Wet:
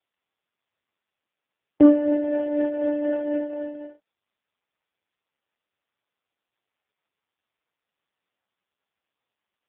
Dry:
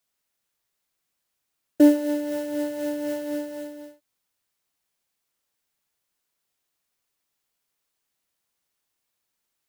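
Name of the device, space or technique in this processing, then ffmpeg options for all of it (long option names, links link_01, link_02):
telephone: -af "highpass=270,lowpass=3100,asoftclip=type=tanh:threshold=-11.5dB,volume=5.5dB" -ar 8000 -c:a libopencore_amrnb -b:a 4750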